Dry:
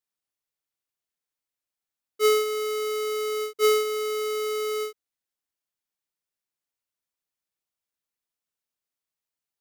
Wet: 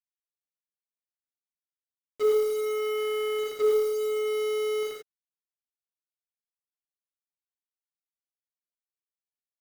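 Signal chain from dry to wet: local Wiener filter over 25 samples; low-pass that closes with the level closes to 730 Hz, closed at -23 dBFS; 2.50–3.39 s: peaking EQ 240 Hz -8 dB 0.29 oct; bit crusher 7-bit; gated-style reverb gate 120 ms rising, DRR -1 dB; trim -1.5 dB

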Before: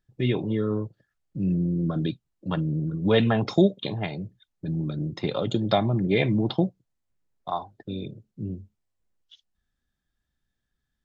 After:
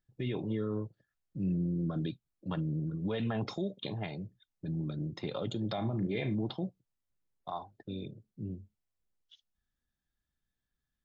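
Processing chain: peak limiter -18.5 dBFS, peak gain reduction 11.5 dB; 5.74–6.35 s: flutter echo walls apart 6.2 m, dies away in 0.22 s; trim -7 dB

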